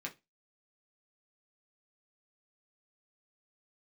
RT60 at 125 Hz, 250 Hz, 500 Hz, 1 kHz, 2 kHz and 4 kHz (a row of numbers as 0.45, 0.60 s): 0.25, 0.25, 0.25, 0.20, 0.20, 0.20 s